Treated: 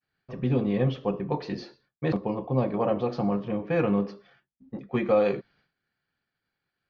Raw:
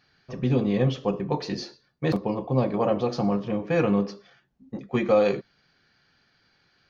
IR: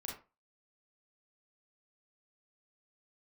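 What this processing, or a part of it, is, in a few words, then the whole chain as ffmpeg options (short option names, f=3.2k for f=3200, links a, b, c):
hearing-loss simulation: -af "lowpass=3.3k,agate=range=-33dB:threshold=-56dB:ratio=3:detection=peak,volume=-2dB"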